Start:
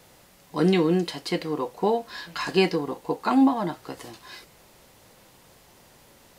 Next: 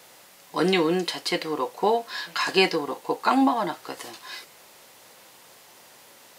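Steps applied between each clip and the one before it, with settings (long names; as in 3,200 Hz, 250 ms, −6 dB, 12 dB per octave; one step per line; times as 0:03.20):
high-pass filter 660 Hz 6 dB per octave
level +5.5 dB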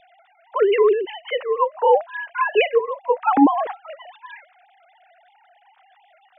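three sine waves on the formant tracks
spectral tilt −2 dB per octave
level +3.5 dB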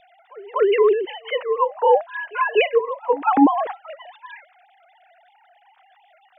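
backwards echo 244 ms −22 dB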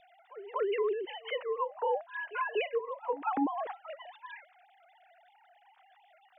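downward compressor 2 to 1, threshold −27 dBFS, peak gain reduction 10.5 dB
level −7 dB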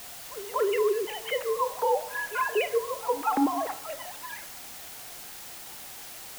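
in parallel at −10 dB: bit-depth reduction 6 bits, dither triangular
on the sum: convolution reverb RT60 0.95 s, pre-delay 28 ms, DRR 13.5 dB
level +3 dB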